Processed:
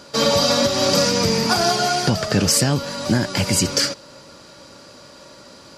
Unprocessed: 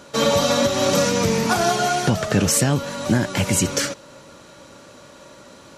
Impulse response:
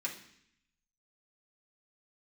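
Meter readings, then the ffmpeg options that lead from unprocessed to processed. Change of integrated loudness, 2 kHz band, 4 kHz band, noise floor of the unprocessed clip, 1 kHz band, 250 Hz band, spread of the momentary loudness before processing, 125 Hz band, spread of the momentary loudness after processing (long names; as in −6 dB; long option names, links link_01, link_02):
+1.5 dB, 0.0 dB, +5.5 dB, −46 dBFS, 0.0 dB, 0.0 dB, 5 LU, 0.0 dB, 5 LU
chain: -af "equalizer=frequency=4800:width=6.2:gain=14.5"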